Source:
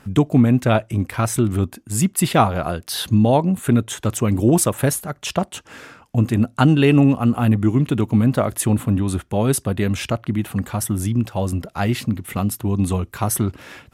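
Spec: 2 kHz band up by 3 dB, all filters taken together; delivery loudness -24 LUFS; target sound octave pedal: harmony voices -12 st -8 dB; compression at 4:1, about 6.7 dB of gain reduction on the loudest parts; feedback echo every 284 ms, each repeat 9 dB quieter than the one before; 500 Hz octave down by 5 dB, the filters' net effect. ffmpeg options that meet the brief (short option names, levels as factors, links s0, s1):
-filter_complex "[0:a]equalizer=f=500:t=o:g=-7,equalizer=f=2000:t=o:g=4.5,acompressor=threshold=0.112:ratio=4,aecho=1:1:284|568|852|1136:0.355|0.124|0.0435|0.0152,asplit=2[s0][s1];[s1]asetrate=22050,aresample=44100,atempo=2,volume=0.398[s2];[s0][s2]amix=inputs=2:normalize=0,volume=0.944"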